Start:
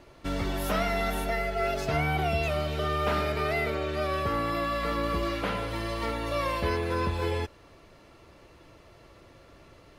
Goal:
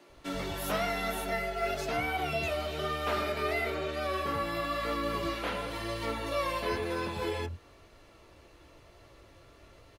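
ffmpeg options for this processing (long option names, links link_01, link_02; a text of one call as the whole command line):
ffmpeg -i in.wav -filter_complex "[0:a]equalizer=frequency=5000:width_type=o:width=0.25:gain=-2.5,acrossover=split=100|2600[link_01][link_02][link_03];[link_01]acompressor=threshold=-45dB:ratio=6[link_04];[link_02]flanger=delay=17:depth=6.3:speed=1[link_05];[link_04][link_05][link_03]amix=inputs=3:normalize=0,acrossover=split=180[link_06][link_07];[link_06]adelay=90[link_08];[link_08][link_07]amix=inputs=2:normalize=0" out.wav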